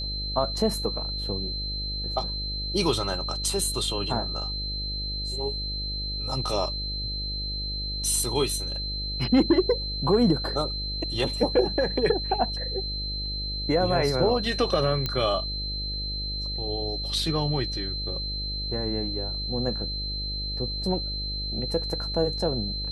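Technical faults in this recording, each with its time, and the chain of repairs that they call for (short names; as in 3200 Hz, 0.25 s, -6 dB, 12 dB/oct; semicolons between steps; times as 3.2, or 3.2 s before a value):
buzz 50 Hz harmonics 13 -34 dBFS
tone 4100 Hz -31 dBFS
15.06 pop -13 dBFS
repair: de-click; de-hum 50 Hz, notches 13; notch 4100 Hz, Q 30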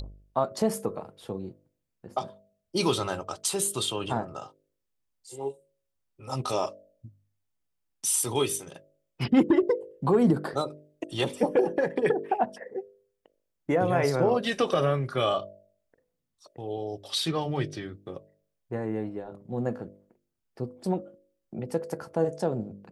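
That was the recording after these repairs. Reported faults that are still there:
none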